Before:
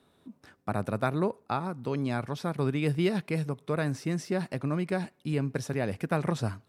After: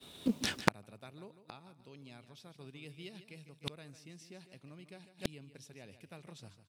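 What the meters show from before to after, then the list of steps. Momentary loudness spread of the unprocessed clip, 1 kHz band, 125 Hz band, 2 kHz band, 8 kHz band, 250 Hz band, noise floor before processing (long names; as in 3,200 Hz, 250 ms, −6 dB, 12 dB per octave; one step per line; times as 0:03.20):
5 LU, −10.5 dB, −18.0 dB, −6.5 dB, −2.0 dB, −12.0 dB, −67 dBFS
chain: high shelf with overshoot 2,100 Hz +9.5 dB, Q 1.5
log-companded quantiser 8 bits
downward expander −55 dBFS
repeating echo 150 ms, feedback 31%, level −12 dB
gate with flip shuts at −30 dBFS, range −39 dB
highs frequency-modulated by the lows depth 0.74 ms
level +15.5 dB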